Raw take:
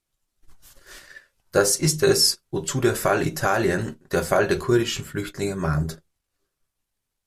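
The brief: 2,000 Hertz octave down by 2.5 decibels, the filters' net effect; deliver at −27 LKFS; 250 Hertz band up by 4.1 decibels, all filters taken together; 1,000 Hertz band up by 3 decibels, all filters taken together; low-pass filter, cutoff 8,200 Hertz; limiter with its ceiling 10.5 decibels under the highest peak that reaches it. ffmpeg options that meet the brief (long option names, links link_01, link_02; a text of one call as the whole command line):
ffmpeg -i in.wav -af "lowpass=8200,equalizer=frequency=250:width_type=o:gain=6.5,equalizer=frequency=1000:width_type=o:gain=6,equalizer=frequency=2000:width_type=o:gain=-7,volume=-2.5dB,alimiter=limit=-16dB:level=0:latency=1" out.wav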